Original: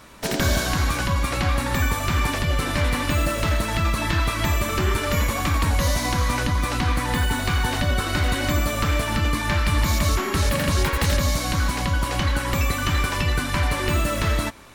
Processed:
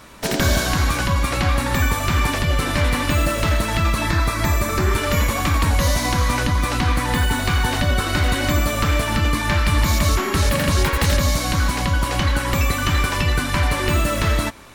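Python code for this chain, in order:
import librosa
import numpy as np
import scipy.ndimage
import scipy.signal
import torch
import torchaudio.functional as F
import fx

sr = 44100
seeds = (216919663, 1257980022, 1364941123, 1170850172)

y = fx.peak_eq(x, sr, hz=3000.0, db=-10.0, octaves=0.33, at=(4.09, 4.93))
y = y * 10.0 ** (3.0 / 20.0)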